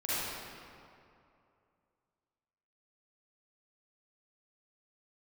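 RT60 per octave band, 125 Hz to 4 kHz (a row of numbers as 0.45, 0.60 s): 2.7, 2.5, 2.6, 2.6, 2.0, 1.5 s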